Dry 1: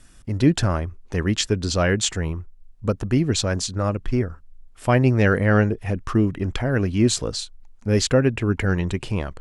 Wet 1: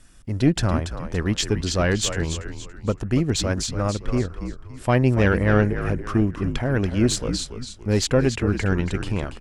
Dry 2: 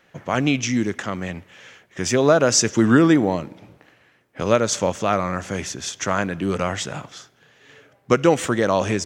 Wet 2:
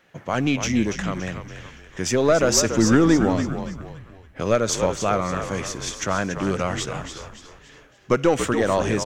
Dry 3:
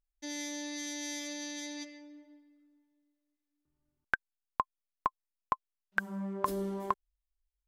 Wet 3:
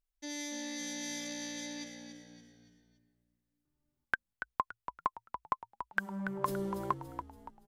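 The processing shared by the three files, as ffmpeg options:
ffmpeg -i in.wav -filter_complex "[0:a]asplit=5[link_01][link_02][link_03][link_04][link_05];[link_02]adelay=284,afreqshift=-59,volume=-9dB[link_06];[link_03]adelay=568,afreqshift=-118,volume=-17dB[link_07];[link_04]adelay=852,afreqshift=-177,volume=-24.9dB[link_08];[link_05]adelay=1136,afreqshift=-236,volume=-32.9dB[link_09];[link_01][link_06][link_07][link_08][link_09]amix=inputs=5:normalize=0,aeval=exprs='(tanh(1.78*val(0)+0.4)-tanh(0.4))/1.78':channel_layout=same" out.wav

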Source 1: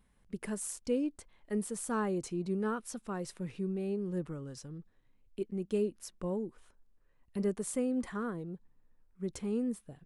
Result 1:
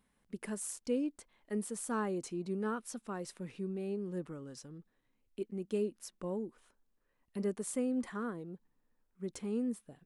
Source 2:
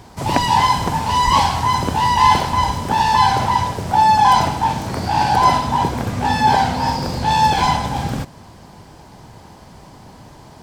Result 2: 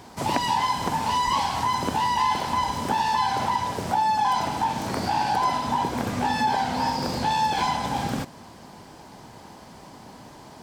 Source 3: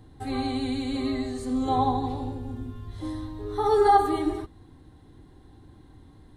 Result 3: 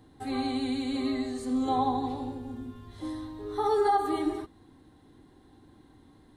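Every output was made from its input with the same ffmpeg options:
ffmpeg -i in.wav -af "lowshelf=frequency=170:gain=-11,acompressor=threshold=-21dB:ratio=3,equalizer=frequency=240:width_type=o:width=0.75:gain=4,volume=-1.5dB" out.wav

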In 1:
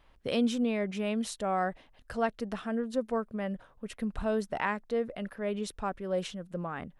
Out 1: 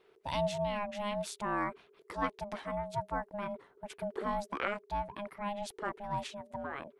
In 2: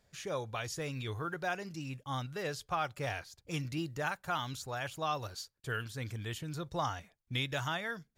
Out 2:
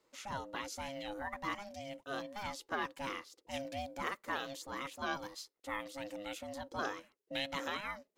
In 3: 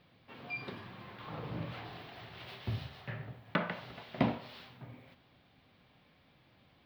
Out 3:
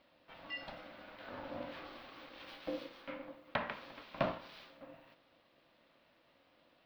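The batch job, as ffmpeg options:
ffmpeg -i in.wav -af "aeval=exprs='val(0)*sin(2*PI*410*n/s)':channel_layout=same,bass=frequency=250:gain=-7,treble=frequency=4000:gain=-1" out.wav

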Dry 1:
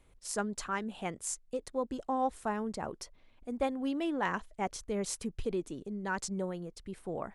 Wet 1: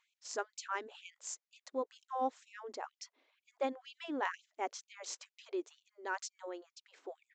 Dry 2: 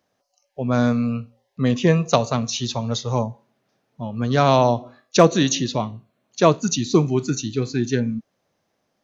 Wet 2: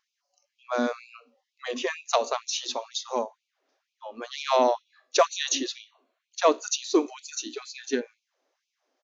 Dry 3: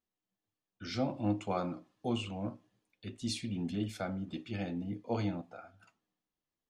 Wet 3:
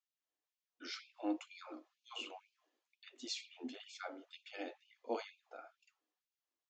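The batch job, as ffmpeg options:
ffmpeg -i in.wav -af "aeval=exprs='0.891*(cos(1*acos(clip(val(0)/0.891,-1,1)))-cos(1*PI/2))+0.0224*(cos(5*acos(clip(val(0)/0.891,-1,1)))-cos(5*PI/2))+0.01*(cos(6*acos(clip(val(0)/0.891,-1,1)))-cos(6*PI/2))':channel_layout=same,aresample=16000,aresample=44100,afftfilt=real='re*gte(b*sr/1024,220*pow(2300/220,0.5+0.5*sin(2*PI*2.1*pts/sr)))':imag='im*gte(b*sr/1024,220*pow(2300/220,0.5+0.5*sin(2*PI*2.1*pts/sr)))':win_size=1024:overlap=0.75,volume=-4dB" out.wav

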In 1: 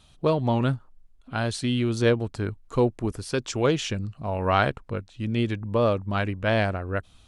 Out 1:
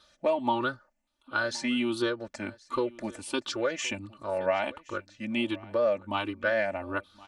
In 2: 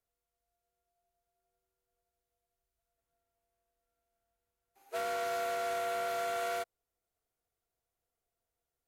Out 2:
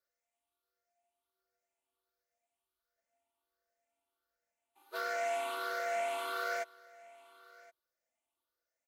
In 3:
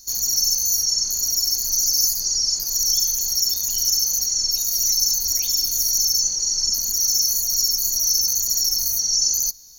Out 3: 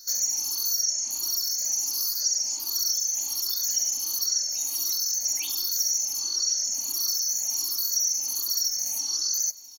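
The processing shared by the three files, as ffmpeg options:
ffmpeg -i in.wav -filter_complex "[0:a]afftfilt=real='re*pow(10,12/40*sin(2*PI*(0.59*log(max(b,1)*sr/1024/100)/log(2)-(1.4)*(pts-256)/sr)))':imag='im*pow(10,12/40*sin(2*PI*(0.59*log(max(b,1)*sr/1024/100)/log(2)-(1.4)*(pts-256)/sr)))':win_size=1024:overlap=0.75,highpass=frequency=720:poles=1,highshelf=frequency=3900:gain=-8,acompressor=threshold=-25dB:ratio=5,aecho=1:1:3.4:0.83,asplit=2[link_01][link_02];[link_02]aecho=0:1:1070:0.0794[link_03];[link_01][link_03]amix=inputs=2:normalize=0" out.wav

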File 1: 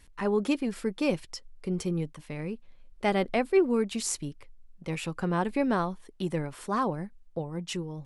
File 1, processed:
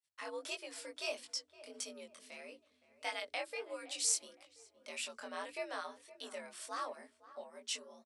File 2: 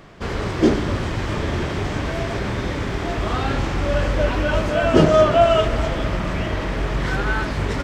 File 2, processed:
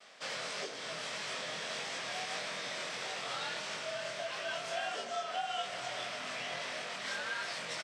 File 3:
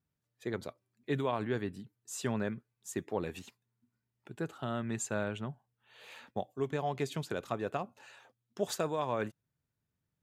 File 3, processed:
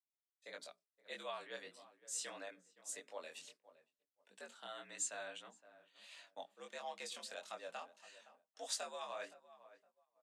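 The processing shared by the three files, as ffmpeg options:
ffmpeg -i in.wav -filter_complex "[0:a]afreqshift=72,acompressor=threshold=-21dB:ratio=12,highpass=frequency=120:width=0.5412,highpass=frequency=120:width=1.3066,equalizer=frequency=340:width_type=q:width=4:gain=-5,equalizer=frequency=600:width_type=q:width=4:gain=8,equalizer=frequency=6900:width_type=q:width=4:gain=-5,lowpass=frequency=8600:width=0.5412,lowpass=frequency=8600:width=1.3066,bandreject=frequency=60:width_type=h:width=6,bandreject=frequency=120:width_type=h:width=6,bandreject=frequency=180:width_type=h:width=6,bandreject=frequency=240:width_type=h:width=6,bandreject=frequency=300:width_type=h:width=6,bandreject=frequency=360:width_type=h:width=6,bandreject=frequency=420:width_type=h:width=6,asplit=2[link_01][link_02];[link_02]adelay=515,lowpass=frequency=1500:poles=1,volume=-15.5dB,asplit=2[link_03][link_04];[link_04]adelay=515,lowpass=frequency=1500:poles=1,volume=0.37,asplit=2[link_05][link_06];[link_06]adelay=515,lowpass=frequency=1500:poles=1,volume=0.37[link_07];[link_01][link_03][link_05][link_07]amix=inputs=4:normalize=0,flanger=delay=20:depth=4.5:speed=1.6,agate=range=-33dB:threshold=-52dB:ratio=3:detection=peak,aderivative,volume=7dB" out.wav

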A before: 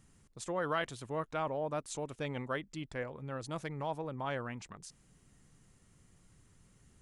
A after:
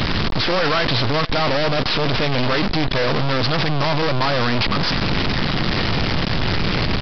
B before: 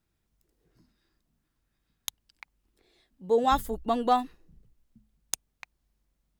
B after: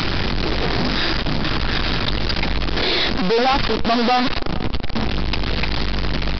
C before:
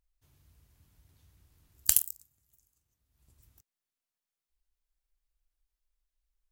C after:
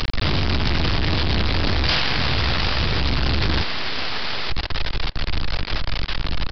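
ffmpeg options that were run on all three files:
ffmpeg -i in.wav -filter_complex "[0:a]aeval=exprs='val(0)+0.5*0.15*sgn(val(0))':channel_layout=same,lowshelf=frequency=72:gain=-3,acrossover=split=130|1700[link_01][link_02][link_03];[link_03]acompressor=mode=upward:threshold=-30dB:ratio=2.5[link_04];[link_01][link_02][link_04]amix=inputs=3:normalize=0,acrusher=bits=4:dc=4:mix=0:aa=0.000001,aresample=11025,asoftclip=type=hard:threshold=-22dB,aresample=44100,asplit=2[link_05][link_06];[link_06]adelay=463,lowpass=frequency=4300:poles=1,volume=-23.5dB,asplit=2[link_07][link_08];[link_08]adelay=463,lowpass=frequency=4300:poles=1,volume=0.47,asplit=2[link_09][link_10];[link_10]adelay=463,lowpass=frequency=4300:poles=1,volume=0.47[link_11];[link_05][link_07][link_09][link_11]amix=inputs=4:normalize=0,volume=8.5dB" out.wav

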